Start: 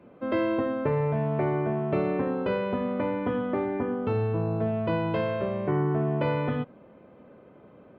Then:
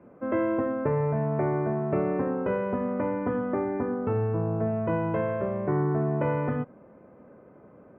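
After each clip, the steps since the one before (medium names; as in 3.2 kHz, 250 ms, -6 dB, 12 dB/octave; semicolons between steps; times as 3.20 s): low-pass 2 kHz 24 dB/octave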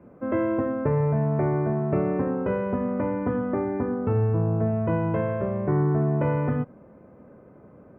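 bass shelf 170 Hz +8.5 dB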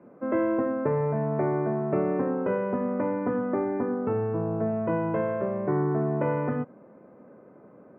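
band-pass 200–2600 Hz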